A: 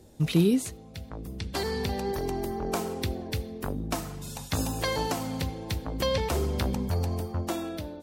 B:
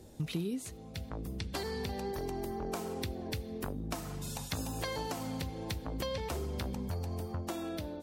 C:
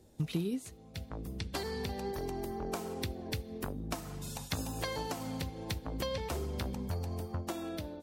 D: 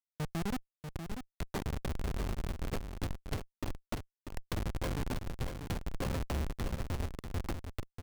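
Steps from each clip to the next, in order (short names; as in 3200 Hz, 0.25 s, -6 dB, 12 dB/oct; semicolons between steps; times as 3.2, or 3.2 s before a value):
compressor 4:1, threshold -35 dBFS, peak gain reduction 15 dB
upward expander 1.5:1, over -51 dBFS; gain +2.5 dB
Schmitt trigger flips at -31 dBFS; on a send: echo 0.641 s -7.5 dB; on the sum: gain +4.5 dB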